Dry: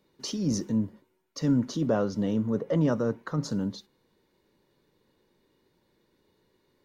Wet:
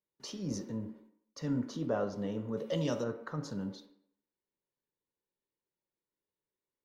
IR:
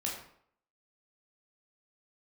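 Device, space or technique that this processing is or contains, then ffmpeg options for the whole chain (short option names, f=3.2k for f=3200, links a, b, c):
filtered reverb send: -filter_complex "[0:a]agate=range=-20dB:threshold=-55dB:ratio=16:detection=peak,asettb=1/sr,asplit=3[a][b][c];[a]atrim=end=2.574[d];[b]atrim=start=2.57:end=3.04,asetpts=PTS-STARTPTS,afade=t=in:d=0.004:c=qsin,afade=t=out:st=0.466:d=0.004:c=qsin,highshelf=f=2.3k:t=q:w=1.5:g=13[e];[c]atrim=start=3.036[f];[d][e]acrossfade=d=0.004:c1=hsin:c2=qsin[g];[g][f]acrossfade=d=0.004:c1=qsin:c2=hsin,asplit=2[h][i];[i]highpass=f=260:w=0.5412,highpass=f=260:w=1.3066,lowpass=3.2k[j];[1:a]atrim=start_sample=2205[k];[j][k]afir=irnorm=-1:irlink=0,volume=-5dB[l];[h][l]amix=inputs=2:normalize=0,volume=-9dB"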